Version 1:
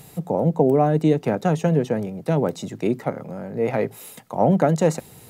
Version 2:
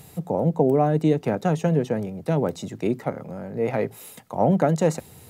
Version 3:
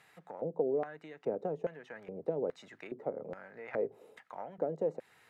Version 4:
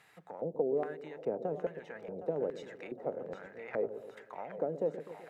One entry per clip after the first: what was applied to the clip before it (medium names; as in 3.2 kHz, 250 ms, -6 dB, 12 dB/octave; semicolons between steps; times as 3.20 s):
peaking EQ 82 Hz +9.5 dB 0.35 oct; trim -2 dB
compression 4:1, threshold -26 dBFS, peak gain reduction 10.5 dB; LFO band-pass square 1.2 Hz 460–1700 Hz
two-band feedback delay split 520 Hz, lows 126 ms, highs 764 ms, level -10 dB